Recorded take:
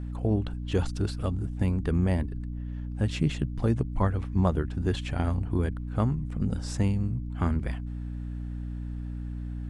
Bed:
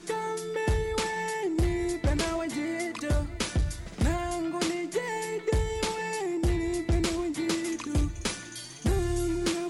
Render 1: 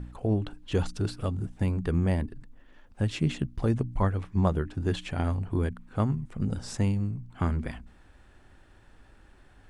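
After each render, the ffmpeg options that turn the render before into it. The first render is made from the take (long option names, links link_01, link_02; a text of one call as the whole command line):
ffmpeg -i in.wav -af "bandreject=frequency=60:width_type=h:width=4,bandreject=frequency=120:width_type=h:width=4,bandreject=frequency=180:width_type=h:width=4,bandreject=frequency=240:width_type=h:width=4,bandreject=frequency=300:width_type=h:width=4" out.wav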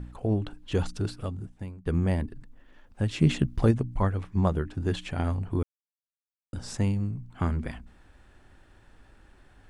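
ffmpeg -i in.wav -filter_complex "[0:a]asplit=3[link_01][link_02][link_03];[link_01]afade=type=out:start_time=3.18:duration=0.02[link_04];[link_02]acontrast=30,afade=type=in:start_time=3.18:duration=0.02,afade=type=out:start_time=3.7:duration=0.02[link_05];[link_03]afade=type=in:start_time=3.7:duration=0.02[link_06];[link_04][link_05][link_06]amix=inputs=3:normalize=0,asplit=4[link_07][link_08][link_09][link_10];[link_07]atrim=end=1.86,asetpts=PTS-STARTPTS,afade=type=out:start_time=0.97:duration=0.89:silence=0.0707946[link_11];[link_08]atrim=start=1.86:end=5.63,asetpts=PTS-STARTPTS,afade=type=in:duration=0.004:curve=hsin:silence=0.0707946,afade=type=out:start_time=3.766:duration=0.004:curve=hsin[link_12];[link_09]atrim=start=5.63:end=6.53,asetpts=PTS-STARTPTS,volume=0[link_13];[link_10]atrim=start=6.53,asetpts=PTS-STARTPTS,afade=type=in:duration=0.004:curve=hsin[link_14];[link_11][link_12][link_13][link_14]concat=n=4:v=0:a=1" out.wav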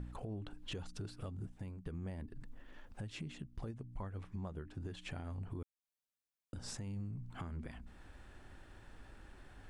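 ffmpeg -i in.wav -af "acompressor=threshold=-36dB:ratio=4,alimiter=level_in=10.5dB:limit=-24dB:level=0:latency=1:release=373,volume=-10.5dB" out.wav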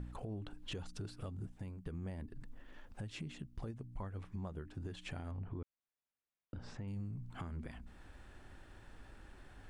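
ffmpeg -i in.wav -filter_complex "[0:a]asettb=1/sr,asplit=3[link_01][link_02][link_03];[link_01]atrim=end=5.314[link_04];[link_02]atrim=start=5.31:end=6.88,asetpts=PTS-STARTPTS,afade=type=in:duration=0.004:curve=qsin,afade=type=out:start_time=1.566:duration=0.004:curve=qsin,lowpass=2700[link_05];[link_03]atrim=start=6.876[link_06];[link_04][link_05]acrossfade=duration=0.004:curve1=hsin:curve2=qsin[link_07];[link_07][link_06]acrossfade=duration=0.004:curve1=qsin:curve2=hsin" out.wav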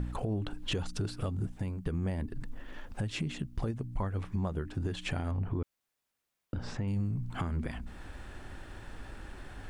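ffmpeg -i in.wav -af "volume=10.5dB" out.wav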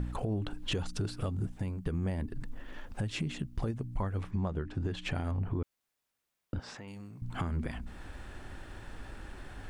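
ffmpeg -i in.wav -filter_complex "[0:a]asettb=1/sr,asplit=3[link_01][link_02][link_03];[link_01]atrim=end=4.314[link_04];[link_02]atrim=start=4.31:end=5.15,asetpts=PTS-STARTPTS,afade=type=in:duration=0.004:curve=qsin,afade=type=out:start_time=0.836:duration=0.004:curve=qsin,adynamicsmooth=sensitivity=4.5:basefreq=6900[link_05];[link_03]atrim=start=5.146[link_06];[link_04][link_05]acrossfade=duration=0.004:curve1=hsin:curve2=qsin[link_07];[link_07][link_06]acrossfade=duration=0.004:curve1=qsin:curve2=hsin,asettb=1/sr,asplit=3[link_08][link_09][link_10];[link_08]atrim=end=6.604[link_11];[link_09]atrim=start=6.6:end=7.22,asetpts=PTS-STARTPTS,afade=type=in:duration=0.004:curve=qsin,afade=type=out:start_time=0.616:duration=0.004:curve=qsin,highpass=frequency=790:poles=1[link_12];[link_10]atrim=start=7.216[link_13];[link_11][link_12]acrossfade=duration=0.004:curve1=hsin:curve2=qsin[link_14];[link_14][link_13]acrossfade=duration=0.004:curve1=qsin:curve2=hsin" out.wav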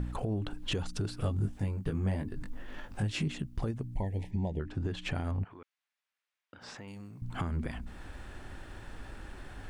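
ffmpeg -i in.wav -filter_complex "[0:a]asettb=1/sr,asplit=3[link_01][link_02][link_03];[link_01]atrim=end=1.214[link_04];[link_02]atrim=start=1.21:end=3.28,asetpts=PTS-STARTPTS,afade=type=in:duration=0.004:curve=qsin,afade=type=out:start_time=2.066:duration=0.004:curve=qsin,asplit=2[link_05][link_06];[link_06]adelay=20,volume=-3.5dB[link_07];[link_05][link_07]amix=inputs=2:normalize=0,atrim=end_sample=91287[link_08];[link_03]atrim=start=3.276[link_09];[link_04][link_08]acrossfade=duration=0.004:curve1=hsin:curve2=qsin[link_10];[link_10][link_09]acrossfade=duration=0.004:curve1=qsin:curve2=hsin,asettb=1/sr,asplit=3[link_11][link_12][link_13];[link_11]atrim=end=3.944[link_14];[link_12]atrim=start=3.94:end=4.6,asetpts=PTS-STARTPTS,afade=type=in:duration=0.004:curve=qsin,afade=type=out:start_time=0.656:duration=0.004:curve=qsin,asuperstop=centerf=1300:order=12:qfactor=1.6[link_15];[link_13]atrim=start=4.596[link_16];[link_14][link_15]acrossfade=duration=0.004:curve1=hsin:curve2=qsin[link_17];[link_17][link_16]acrossfade=duration=0.004:curve1=qsin:curve2=hsin,asplit=3[link_18][link_19][link_20];[link_18]afade=type=out:start_time=5.43:duration=0.02[link_21];[link_19]bandpass=frequency=2100:width_type=q:width=0.86,afade=type=in:start_time=5.43:duration=0.02,afade=type=out:start_time=6.6:duration=0.02[link_22];[link_20]afade=type=in:start_time=6.6:duration=0.02[link_23];[link_21][link_22][link_23]amix=inputs=3:normalize=0" out.wav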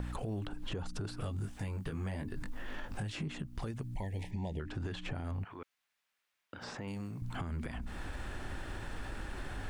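ffmpeg -i in.wav -filter_complex "[0:a]acrossover=split=720|1500[link_01][link_02][link_03];[link_01]acompressor=threshold=-42dB:ratio=4[link_04];[link_02]acompressor=threshold=-56dB:ratio=4[link_05];[link_03]acompressor=threshold=-55dB:ratio=4[link_06];[link_04][link_05][link_06]amix=inputs=3:normalize=0,asplit=2[link_07][link_08];[link_08]alimiter=level_in=14.5dB:limit=-24dB:level=0:latency=1:release=51,volume=-14.5dB,volume=0.5dB[link_09];[link_07][link_09]amix=inputs=2:normalize=0" out.wav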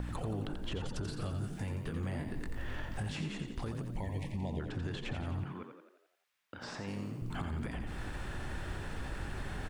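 ffmpeg -i in.wav -filter_complex "[0:a]asplit=8[link_01][link_02][link_03][link_04][link_05][link_06][link_07][link_08];[link_02]adelay=87,afreqshift=45,volume=-7dB[link_09];[link_03]adelay=174,afreqshift=90,volume=-12.4dB[link_10];[link_04]adelay=261,afreqshift=135,volume=-17.7dB[link_11];[link_05]adelay=348,afreqshift=180,volume=-23.1dB[link_12];[link_06]adelay=435,afreqshift=225,volume=-28.4dB[link_13];[link_07]adelay=522,afreqshift=270,volume=-33.8dB[link_14];[link_08]adelay=609,afreqshift=315,volume=-39.1dB[link_15];[link_01][link_09][link_10][link_11][link_12][link_13][link_14][link_15]amix=inputs=8:normalize=0" out.wav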